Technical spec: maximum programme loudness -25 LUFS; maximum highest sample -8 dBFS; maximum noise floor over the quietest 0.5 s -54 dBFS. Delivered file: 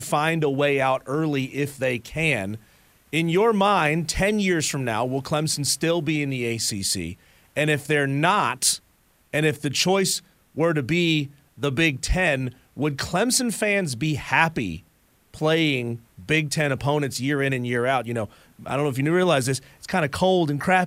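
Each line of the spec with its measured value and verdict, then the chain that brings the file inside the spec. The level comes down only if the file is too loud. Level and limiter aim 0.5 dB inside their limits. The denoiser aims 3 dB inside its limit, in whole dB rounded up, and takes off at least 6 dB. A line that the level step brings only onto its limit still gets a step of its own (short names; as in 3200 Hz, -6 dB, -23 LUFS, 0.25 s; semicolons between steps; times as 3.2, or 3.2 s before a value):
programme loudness -23.0 LUFS: fail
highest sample -3.5 dBFS: fail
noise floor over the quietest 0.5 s -61 dBFS: OK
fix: gain -2.5 dB; limiter -8.5 dBFS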